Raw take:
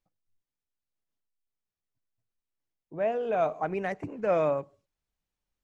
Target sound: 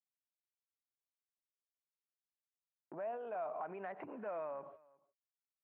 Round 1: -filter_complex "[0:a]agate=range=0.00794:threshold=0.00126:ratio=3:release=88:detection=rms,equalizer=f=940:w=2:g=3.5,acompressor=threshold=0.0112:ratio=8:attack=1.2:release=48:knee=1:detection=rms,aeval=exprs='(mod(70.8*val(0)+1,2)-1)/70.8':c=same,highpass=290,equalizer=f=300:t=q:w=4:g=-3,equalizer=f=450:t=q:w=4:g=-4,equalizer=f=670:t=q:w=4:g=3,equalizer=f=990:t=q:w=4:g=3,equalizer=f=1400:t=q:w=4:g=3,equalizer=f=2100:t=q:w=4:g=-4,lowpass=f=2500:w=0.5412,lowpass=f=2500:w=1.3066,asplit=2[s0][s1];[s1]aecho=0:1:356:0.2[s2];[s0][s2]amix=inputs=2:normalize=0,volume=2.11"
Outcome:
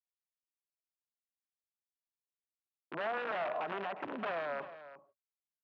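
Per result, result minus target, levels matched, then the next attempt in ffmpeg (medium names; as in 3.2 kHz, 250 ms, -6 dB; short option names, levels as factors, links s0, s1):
echo-to-direct +10.5 dB; compression: peak gain reduction -6.5 dB
-filter_complex "[0:a]agate=range=0.00794:threshold=0.00126:ratio=3:release=88:detection=rms,equalizer=f=940:w=2:g=3.5,acompressor=threshold=0.0112:ratio=8:attack=1.2:release=48:knee=1:detection=rms,aeval=exprs='(mod(70.8*val(0)+1,2)-1)/70.8':c=same,highpass=290,equalizer=f=300:t=q:w=4:g=-3,equalizer=f=450:t=q:w=4:g=-4,equalizer=f=670:t=q:w=4:g=3,equalizer=f=990:t=q:w=4:g=3,equalizer=f=1400:t=q:w=4:g=3,equalizer=f=2100:t=q:w=4:g=-4,lowpass=f=2500:w=0.5412,lowpass=f=2500:w=1.3066,asplit=2[s0][s1];[s1]aecho=0:1:356:0.0596[s2];[s0][s2]amix=inputs=2:normalize=0,volume=2.11"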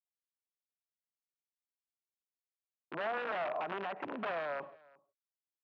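compression: peak gain reduction -6.5 dB
-filter_complex "[0:a]agate=range=0.00794:threshold=0.00126:ratio=3:release=88:detection=rms,equalizer=f=940:w=2:g=3.5,acompressor=threshold=0.00473:ratio=8:attack=1.2:release=48:knee=1:detection=rms,aeval=exprs='(mod(70.8*val(0)+1,2)-1)/70.8':c=same,highpass=290,equalizer=f=300:t=q:w=4:g=-3,equalizer=f=450:t=q:w=4:g=-4,equalizer=f=670:t=q:w=4:g=3,equalizer=f=990:t=q:w=4:g=3,equalizer=f=1400:t=q:w=4:g=3,equalizer=f=2100:t=q:w=4:g=-4,lowpass=f=2500:w=0.5412,lowpass=f=2500:w=1.3066,asplit=2[s0][s1];[s1]aecho=0:1:356:0.0596[s2];[s0][s2]amix=inputs=2:normalize=0,volume=2.11"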